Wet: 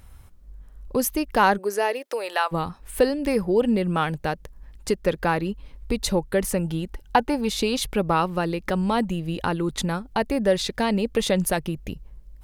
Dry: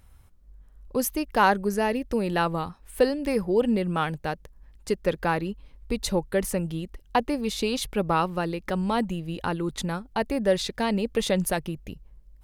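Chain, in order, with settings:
0:01.57–0:02.51: high-pass filter 280 Hz → 710 Hz 24 dB per octave
in parallel at +1.5 dB: downward compressor, threshold −33 dBFS, peak gain reduction 17 dB
0:06.64–0:07.49: on the sum: hollow resonant body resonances 860/1,500 Hz, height 11 dB

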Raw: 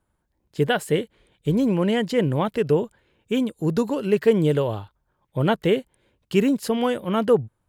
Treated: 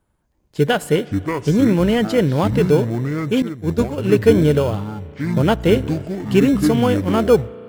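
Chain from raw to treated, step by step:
delay with pitch and tempo change per echo 234 ms, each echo −7 semitones, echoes 2, each echo −6 dB
in parallel at −12 dB: decimation without filtering 23×
on the sum: spring reverb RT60 4 s, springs 34 ms, chirp 50 ms, DRR 19.5 dB
0:03.42–0:03.98: downward expander −14 dBFS
level +3 dB

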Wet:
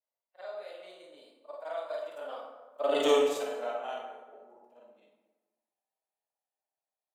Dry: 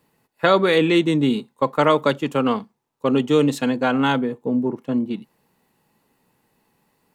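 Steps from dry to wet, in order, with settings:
every overlapping window played backwards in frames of 118 ms
source passing by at 0:03.05, 24 m/s, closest 1.3 metres
high-pass with resonance 640 Hz, resonance Q 6.5
high-shelf EQ 3,600 Hz +9 dB
dense smooth reverb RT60 1.2 s, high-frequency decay 0.6×, DRR 1 dB

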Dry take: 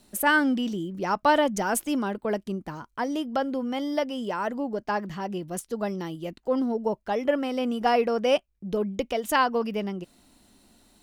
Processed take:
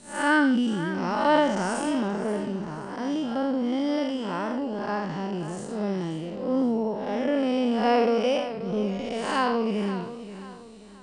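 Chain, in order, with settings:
spectrum smeared in time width 191 ms
elliptic low-pass filter 9,000 Hz, stop band 40 dB
feedback echo with a swinging delay time 531 ms, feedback 38%, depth 92 cents, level −13 dB
level +5.5 dB

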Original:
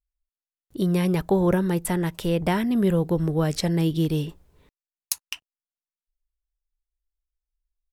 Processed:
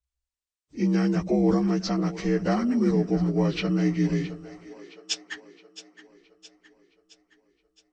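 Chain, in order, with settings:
partials spread apart or drawn together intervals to 81%
tape wow and flutter 21 cents
echo with a time of its own for lows and highs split 330 Hz, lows 95 ms, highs 667 ms, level −15 dB

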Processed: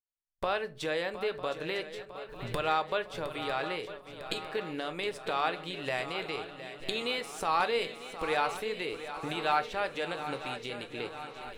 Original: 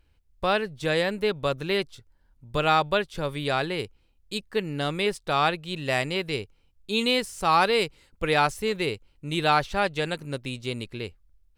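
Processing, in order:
camcorder AGC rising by 53 dB per second
bass and treble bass −14 dB, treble −6 dB
noise gate −47 dBFS, range −35 dB
feedback echo with a long and a short gap by turns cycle 952 ms, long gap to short 3 to 1, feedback 59%, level −12 dB
rectangular room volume 170 cubic metres, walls furnished, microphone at 0.47 metres
level −7.5 dB

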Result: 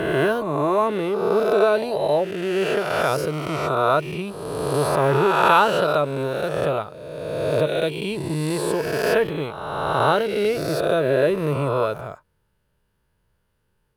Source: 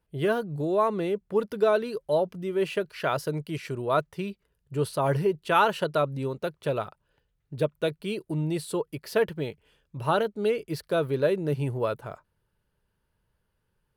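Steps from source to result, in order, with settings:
peak hold with a rise ahead of every peak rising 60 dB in 1.87 s
level +2 dB

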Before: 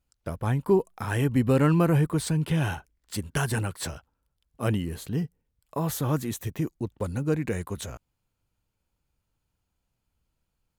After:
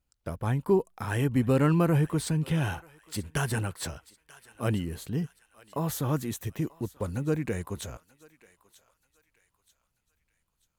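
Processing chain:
feedback echo with a high-pass in the loop 936 ms, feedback 45%, high-pass 1,200 Hz, level −18 dB
level −2 dB

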